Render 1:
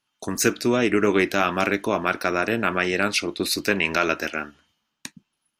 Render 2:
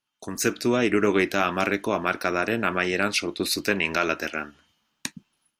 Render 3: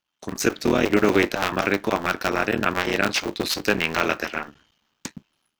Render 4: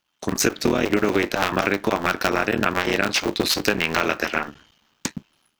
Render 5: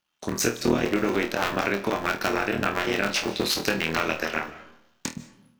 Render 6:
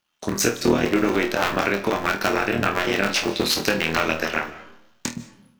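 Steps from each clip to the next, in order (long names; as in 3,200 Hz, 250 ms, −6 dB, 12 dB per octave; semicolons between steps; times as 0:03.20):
automatic gain control gain up to 13.5 dB; level −6 dB
sub-harmonics by changed cycles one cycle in 3, muted; parametric band 10,000 Hz −8.5 dB 0.54 octaves; level +3.5 dB
downward compressor, threshold −23 dBFS, peak gain reduction 10 dB; level +7 dB
flutter between parallel walls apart 4.3 metres, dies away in 0.24 s; comb and all-pass reverb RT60 0.81 s, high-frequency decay 0.6×, pre-delay 115 ms, DRR 15.5 dB; level −5 dB
flanger 0.39 Hz, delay 8.3 ms, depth 5.6 ms, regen +76%; level +8 dB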